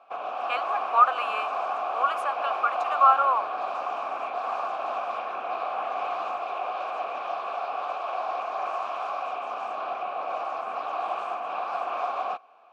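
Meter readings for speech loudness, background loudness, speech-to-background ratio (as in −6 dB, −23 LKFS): −25.0 LKFS, −30.5 LKFS, 5.5 dB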